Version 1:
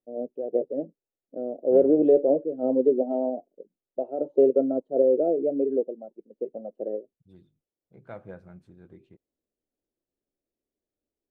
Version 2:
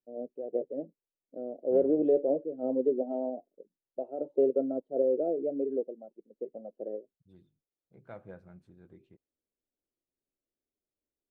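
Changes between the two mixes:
first voice −6.5 dB
second voice −5.0 dB

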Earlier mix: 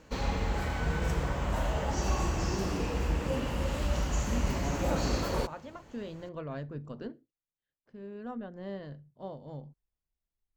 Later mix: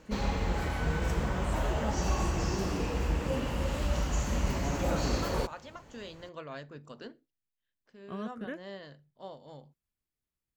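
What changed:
first voice: unmuted
second voice: add spectral tilt +3.5 dB per octave

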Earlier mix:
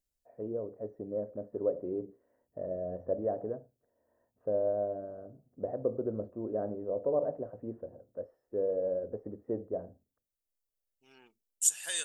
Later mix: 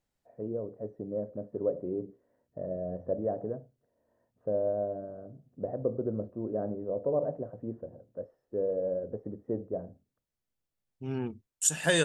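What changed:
second voice: remove first difference
master: add parametric band 150 Hz +7.5 dB 1.2 octaves

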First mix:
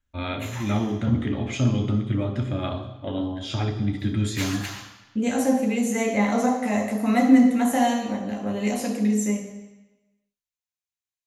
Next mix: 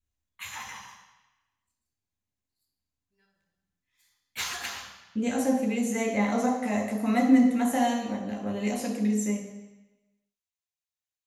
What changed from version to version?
first voice: muted
second voice −4.0 dB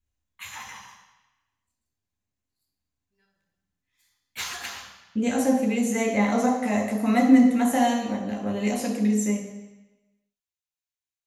speech +3.5 dB

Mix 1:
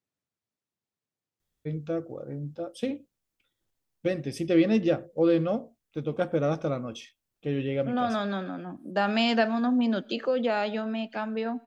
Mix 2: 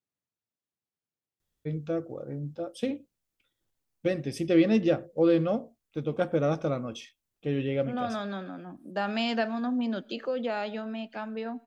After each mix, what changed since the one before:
second voice −4.5 dB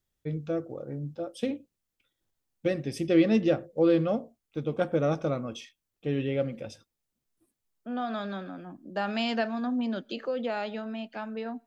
first voice: entry −1.40 s
second voice: send −6.5 dB

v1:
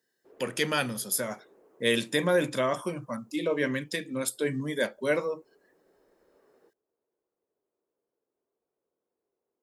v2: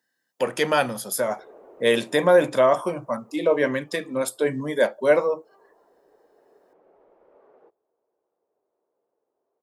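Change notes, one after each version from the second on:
background: entry +1.00 s
master: add parametric band 740 Hz +12.5 dB 1.7 octaves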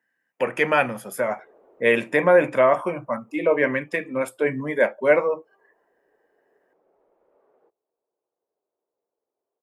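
speech: add high shelf with overshoot 3,100 Hz −9 dB, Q 3
background −7.5 dB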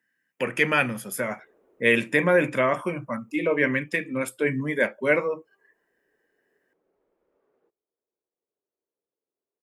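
speech +4.0 dB
master: add parametric band 740 Hz −12.5 dB 1.7 octaves

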